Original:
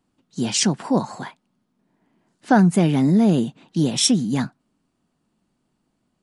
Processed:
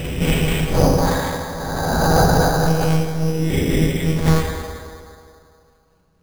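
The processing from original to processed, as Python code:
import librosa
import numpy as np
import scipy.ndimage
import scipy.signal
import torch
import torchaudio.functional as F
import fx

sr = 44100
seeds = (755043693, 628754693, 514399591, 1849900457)

y = fx.spec_swells(x, sr, rise_s=1.79)
y = fx.hum_notches(y, sr, base_hz=50, count=9)
y = fx.over_compress(y, sr, threshold_db=-19.0, ratio=-1.0)
y = y * (1.0 - 0.66 / 2.0 + 0.66 / 2.0 * np.cos(2.0 * np.pi * 3.7 * (np.arange(len(y)) / sr)))
y = fx.lpc_monotone(y, sr, seeds[0], pitch_hz=160.0, order=8)
y = fx.rev_fdn(y, sr, rt60_s=2.5, lf_ratio=0.8, hf_ratio=0.5, size_ms=36.0, drr_db=-3.0)
y = np.repeat(y[::8], 8)[:len(y)]
y = fx.pre_swell(y, sr, db_per_s=25.0, at=(0.89, 3.1))
y = y * librosa.db_to_amplitude(2.5)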